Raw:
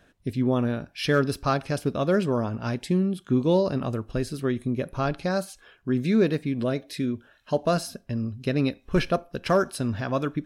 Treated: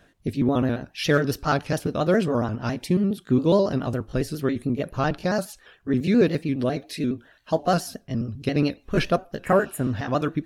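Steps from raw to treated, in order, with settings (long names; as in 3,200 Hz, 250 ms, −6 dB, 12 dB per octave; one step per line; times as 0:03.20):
pitch shifter gated in a rhythm +1.5 semitones, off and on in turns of 69 ms
healed spectral selection 0:09.47–0:09.89, 2,300–6,700 Hz
level +2.5 dB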